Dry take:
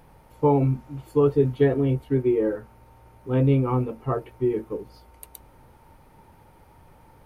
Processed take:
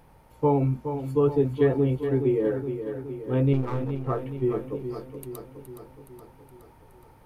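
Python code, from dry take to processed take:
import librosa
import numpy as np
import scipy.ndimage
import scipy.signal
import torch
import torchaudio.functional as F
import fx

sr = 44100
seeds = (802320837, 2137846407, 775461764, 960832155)

y = fx.halfwave_gain(x, sr, db=-12.0, at=(3.53, 4.07))
y = fx.echo_feedback(y, sr, ms=419, feedback_pct=59, wet_db=-9.0)
y = y * librosa.db_to_amplitude(-2.5)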